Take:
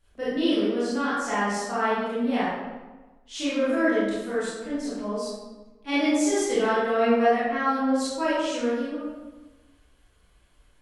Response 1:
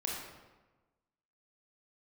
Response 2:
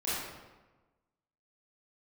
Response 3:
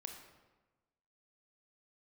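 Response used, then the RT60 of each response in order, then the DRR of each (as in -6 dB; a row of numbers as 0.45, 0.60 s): 2; 1.2, 1.2, 1.2 s; -3.0, -11.5, 3.5 dB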